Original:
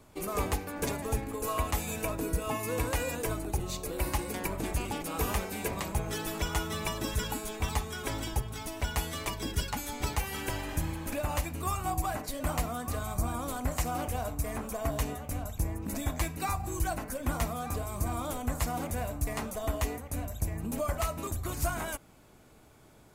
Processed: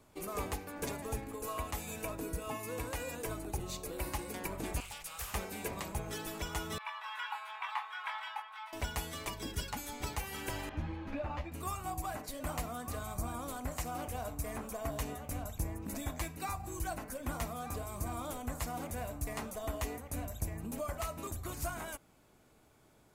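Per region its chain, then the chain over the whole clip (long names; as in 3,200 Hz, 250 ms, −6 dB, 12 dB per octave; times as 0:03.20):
0:04.80–0:05.34: guitar amp tone stack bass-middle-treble 10-0-10 + gain into a clipping stage and back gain 27.5 dB + highs frequency-modulated by the lows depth 0.93 ms
0:06.78–0:08.73: elliptic high-pass filter 910 Hz, stop band 70 dB + high-frequency loss of the air 490 metres + double-tracking delay 23 ms −4.5 dB
0:10.69–0:11.52: high-frequency loss of the air 260 metres + string-ensemble chorus
whole clip: low-shelf EQ 160 Hz −3 dB; speech leveller 0.5 s; level −5 dB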